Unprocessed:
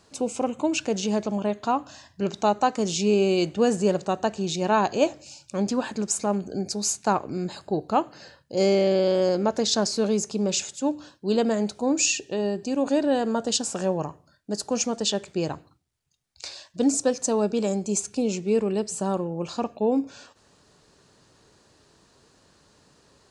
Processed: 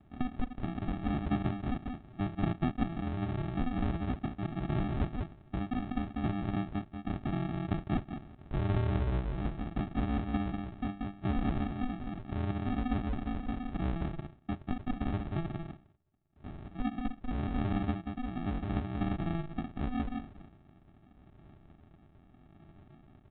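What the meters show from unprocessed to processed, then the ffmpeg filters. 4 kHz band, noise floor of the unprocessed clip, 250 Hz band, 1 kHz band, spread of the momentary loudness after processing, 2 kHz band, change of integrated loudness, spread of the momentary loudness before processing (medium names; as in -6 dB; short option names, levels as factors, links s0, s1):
-20.5 dB, -61 dBFS, -8.0 dB, -12.5 dB, 7 LU, -10.0 dB, -10.5 dB, 9 LU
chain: -af "acompressor=threshold=0.0282:ratio=6,aecho=1:1:41|187:0.168|0.668,adynamicequalizer=threshold=0.00562:dfrequency=330:dqfactor=1.9:tfrequency=330:tqfactor=1.9:attack=5:release=100:ratio=0.375:range=2:mode=cutabove:tftype=bell,aresample=8000,acrusher=samples=16:mix=1:aa=0.000001,aresample=44100,tremolo=f=0.79:d=0.38,lowpass=f=1300:p=1,volume=1.41"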